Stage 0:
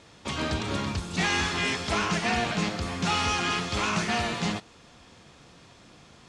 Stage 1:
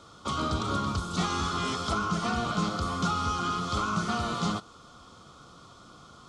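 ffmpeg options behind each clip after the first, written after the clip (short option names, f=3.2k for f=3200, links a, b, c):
-filter_complex "[0:a]superequalizer=10b=2.82:11b=0.282:12b=0.355,acrossover=split=320[a][b];[b]acompressor=threshold=-28dB:ratio=6[c];[a][c]amix=inputs=2:normalize=0"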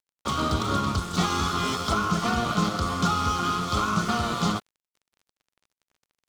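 -af "aeval=exprs='sgn(val(0))*max(abs(val(0))-0.0075,0)':c=same,volume=5.5dB"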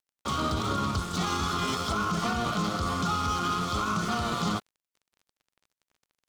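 -af "alimiter=limit=-18dB:level=0:latency=1:release=21,volume=-1dB"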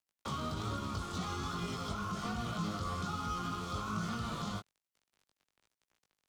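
-filter_complex "[0:a]acrossover=split=180|1200|7600[a][b][c][d];[a]acompressor=threshold=-35dB:ratio=4[e];[b]acompressor=threshold=-39dB:ratio=4[f];[c]acompressor=threshold=-42dB:ratio=4[g];[d]acompressor=threshold=-58dB:ratio=4[h];[e][f][g][h]amix=inputs=4:normalize=0,flanger=delay=17.5:depth=3.5:speed=1.2"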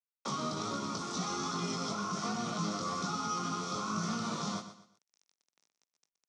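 -af "acrusher=bits=9:mix=0:aa=0.000001,highpass=f=160:w=0.5412,highpass=f=160:w=1.3066,equalizer=f=1.6k:t=q:w=4:g=-5,equalizer=f=3k:t=q:w=4:g=-6,equalizer=f=5.7k:t=q:w=4:g=10,lowpass=f=8k:w=0.5412,lowpass=f=8k:w=1.3066,aecho=1:1:122|244|366:0.266|0.0851|0.0272,volume=3.5dB"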